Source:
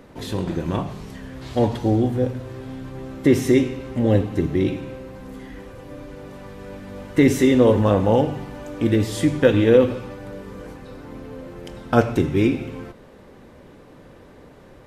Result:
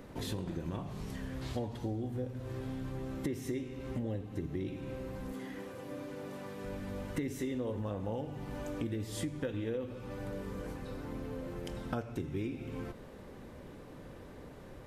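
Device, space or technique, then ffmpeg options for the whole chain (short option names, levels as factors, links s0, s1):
ASMR close-microphone chain: -filter_complex "[0:a]asettb=1/sr,asplit=3[s0][s1][s2];[s0]atrim=end=5.324[s3];[s1]atrim=start=5.32:end=6.64,asetpts=PTS-STARTPTS,afade=t=in:d=0.004:c=qsin,afade=t=out:st=1.316:d=0.004:c=qsin,highpass=170[s4];[s2]atrim=start=6.636[s5];[s3][s4]acrossfade=d=0.004:c1=hsin:c2=qsin[s6];[s6][s5]acrossfade=d=0.004:c1=qsin:c2=hsin,lowshelf=f=180:g=4,acompressor=threshold=0.0316:ratio=6,highshelf=f=9000:g=5.5,volume=0.562"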